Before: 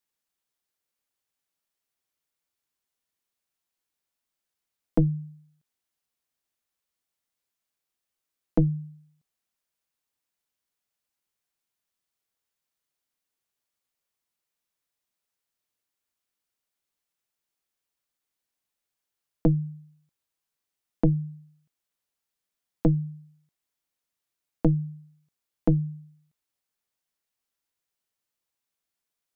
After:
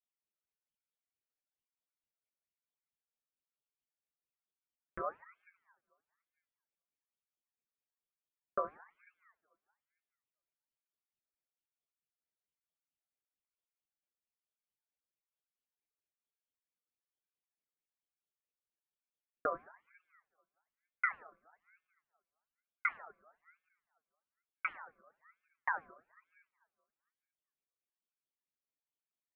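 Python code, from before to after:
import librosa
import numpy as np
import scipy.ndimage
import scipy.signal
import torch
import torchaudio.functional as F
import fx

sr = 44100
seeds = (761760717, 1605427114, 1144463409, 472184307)

y = fx.notch_comb(x, sr, f0_hz=1000.0)
y = fx.rev_double_slope(y, sr, seeds[0], early_s=0.6, late_s=2.0, knee_db=-18, drr_db=3.0)
y = fx.dynamic_eq(y, sr, hz=1200.0, q=0.83, threshold_db=-46.0, ratio=4.0, max_db=5)
y = fx.wah_lfo(y, sr, hz=4.5, low_hz=280.0, high_hz=1500.0, q=3.6)
y = fx.ring_lfo(y, sr, carrier_hz=1400.0, swing_pct=40, hz=1.1)
y = y * librosa.db_to_amplitude(-2.0)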